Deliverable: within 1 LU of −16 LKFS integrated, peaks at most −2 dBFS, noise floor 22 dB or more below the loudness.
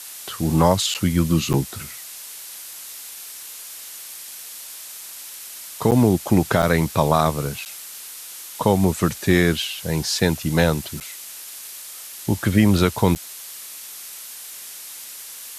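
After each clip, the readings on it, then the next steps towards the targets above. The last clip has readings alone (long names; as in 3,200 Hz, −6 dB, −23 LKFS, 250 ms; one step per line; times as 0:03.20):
number of dropouts 7; longest dropout 8.6 ms; background noise floor −38 dBFS; target noise floor −43 dBFS; integrated loudness −20.5 LKFS; sample peak −4.0 dBFS; target loudness −16.0 LKFS
→ repair the gap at 0:00.94/0:01.53/0:05.91/0:06.62/0:07.65/0:11.00/0:13.15, 8.6 ms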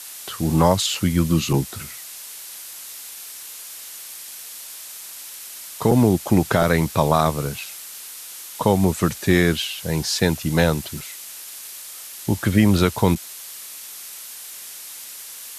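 number of dropouts 0; background noise floor −38 dBFS; target noise floor −43 dBFS
→ noise reduction from a noise print 6 dB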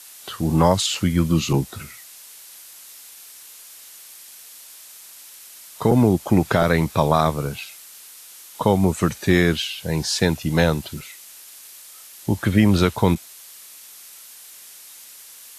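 background noise floor −44 dBFS; integrated loudness −20.0 LKFS; sample peak −4.5 dBFS; target loudness −16.0 LKFS
→ level +4 dB
brickwall limiter −2 dBFS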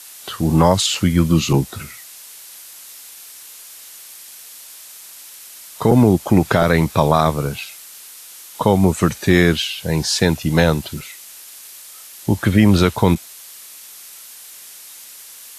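integrated loudness −16.5 LKFS; sample peak −2.0 dBFS; background noise floor −40 dBFS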